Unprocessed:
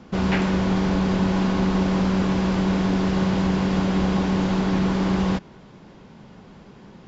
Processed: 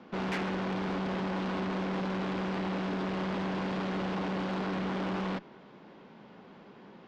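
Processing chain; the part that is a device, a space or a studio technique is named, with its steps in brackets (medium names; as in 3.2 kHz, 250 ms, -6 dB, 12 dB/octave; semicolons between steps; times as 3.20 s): three-band isolator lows -13 dB, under 180 Hz, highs -19 dB, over 4.7 kHz; tube preamp driven hard (valve stage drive 27 dB, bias 0.45; bass shelf 110 Hz -7.5 dB; treble shelf 6.5 kHz -4.5 dB); trim -1.5 dB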